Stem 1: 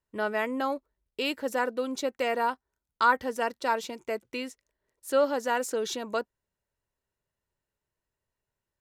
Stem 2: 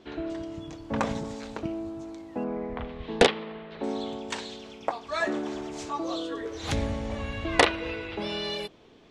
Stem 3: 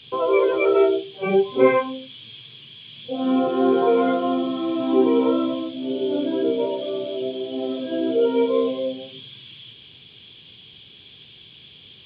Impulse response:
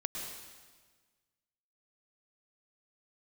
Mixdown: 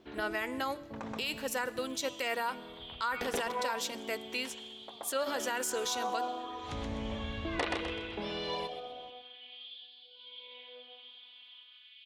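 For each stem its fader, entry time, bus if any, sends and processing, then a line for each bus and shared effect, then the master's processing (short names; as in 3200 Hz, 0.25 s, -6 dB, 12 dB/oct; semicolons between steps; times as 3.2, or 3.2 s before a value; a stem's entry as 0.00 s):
-2.0 dB, 0.00 s, send -21 dB, no echo send, tilt shelf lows -7 dB, about 1300 Hz; de-hum 287.7 Hz, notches 29
-6.5 dB, 0.00 s, send -21.5 dB, echo send -10 dB, high shelf 9500 Hz -10 dB; auto duck -20 dB, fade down 1.80 s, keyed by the first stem
-9.5 dB, 1.90 s, no send, no echo send, limiter -13.5 dBFS, peak gain reduction 10.5 dB; robotiser 248 Hz; LFO high-pass sine 0.4 Hz 750–4300 Hz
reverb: on, RT60 1.5 s, pre-delay 0.1 s
echo: feedback echo 0.127 s, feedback 38%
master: limiter -23.5 dBFS, peak gain reduction 11.5 dB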